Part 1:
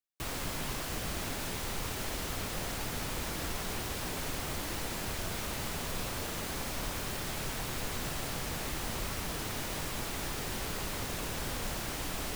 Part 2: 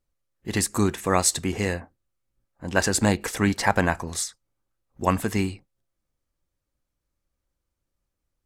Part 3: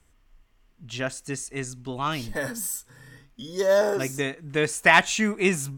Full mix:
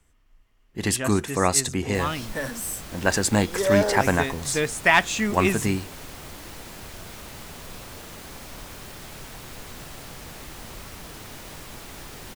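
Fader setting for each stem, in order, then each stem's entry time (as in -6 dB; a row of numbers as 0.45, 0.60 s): -3.5, 0.0, -1.0 dB; 1.75, 0.30, 0.00 s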